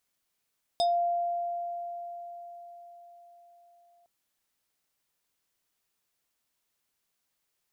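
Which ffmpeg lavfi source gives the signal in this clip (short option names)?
-f lavfi -i "aevalsrc='0.0841*pow(10,-3*t/4.96)*sin(2*PI*694*t+0.97*pow(10,-3*t/0.2)*sin(2*PI*6.26*694*t))':d=3.26:s=44100"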